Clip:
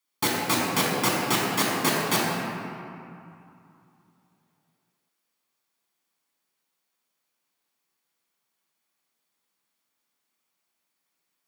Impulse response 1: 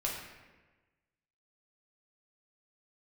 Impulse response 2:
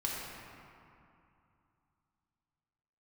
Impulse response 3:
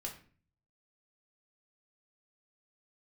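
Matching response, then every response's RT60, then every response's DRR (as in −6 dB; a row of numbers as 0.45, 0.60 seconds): 2; 1.3, 2.6, 0.45 seconds; −3.5, −4.5, −0.5 decibels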